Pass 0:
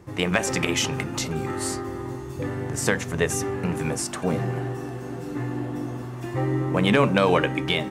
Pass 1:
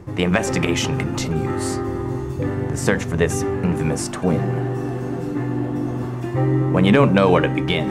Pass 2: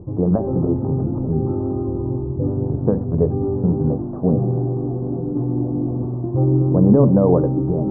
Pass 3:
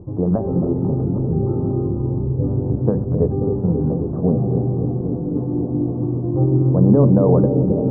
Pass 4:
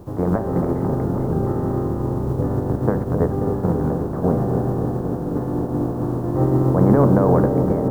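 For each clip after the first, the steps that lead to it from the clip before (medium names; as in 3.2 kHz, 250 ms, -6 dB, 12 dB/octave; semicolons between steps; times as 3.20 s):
tilt EQ -1.5 dB/octave; hum notches 60/120 Hz; reverse; upward compressor, threshold -22 dBFS; reverse; trim +3 dB
Gaussian low-pass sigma 12 samples; trim +3 dB
bucket-brigade echo 268 ms, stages 1024, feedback 85%, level -7.5 dB; trim -1 dB
spectral contrast reduction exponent 0.57; trim -1.5 dB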